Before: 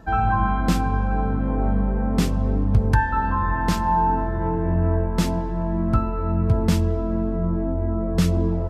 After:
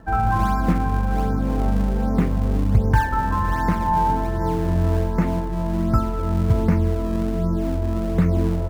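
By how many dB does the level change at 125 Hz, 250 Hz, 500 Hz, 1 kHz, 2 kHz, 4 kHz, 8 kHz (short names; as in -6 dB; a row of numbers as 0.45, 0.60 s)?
+1.0, +1.0, +0.5, +0.5, -0.5, -5.5, -5.5 dB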